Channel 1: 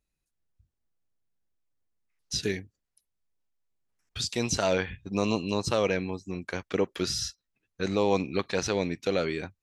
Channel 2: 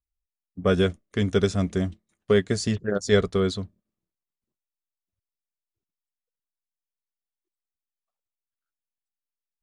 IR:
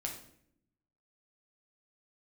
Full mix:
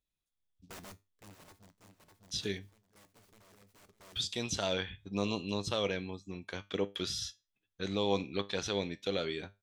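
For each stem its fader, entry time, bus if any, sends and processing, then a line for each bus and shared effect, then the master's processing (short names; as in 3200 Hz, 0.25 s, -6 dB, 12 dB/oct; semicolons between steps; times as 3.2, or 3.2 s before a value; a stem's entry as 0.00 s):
-4.0 dB, 0.00 s, no send, no echo send, bell 3400 Hz +14 dB 0.27 oct
3.21 s -19.5 dB -> 3.58 s -12 dB, 0.05 s, no send, echo send -15 dB, wrapped overs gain 17.5 dB; noise-modulated delay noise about 4400 Hz, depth 0.065 ms; auto duck -22 dB, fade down 1.65 s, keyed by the first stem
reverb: off
echo: feedback echo 0.603 s, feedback 17%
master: resonator 100 Hz, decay 0.25 s, harmonics all, mix 50%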